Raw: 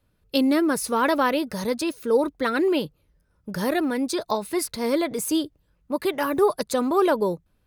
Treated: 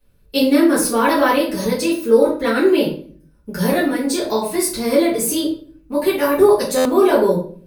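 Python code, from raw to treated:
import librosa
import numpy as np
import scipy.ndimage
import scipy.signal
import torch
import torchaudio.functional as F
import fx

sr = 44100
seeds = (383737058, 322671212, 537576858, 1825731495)

y = fx.high_shelf(x, sr, hz=6600.0, db=7.0)
y = fx.room_shoebox(y, sr, seeds[0], volume_m3=46.0, walls='mixed', distance_m=1.9)
y = fx.buffer_glitch(y, sr, at_s=(6.77,), block=512, repeats=6)
y = y * 10.0 ** (-4.5 / 20.0)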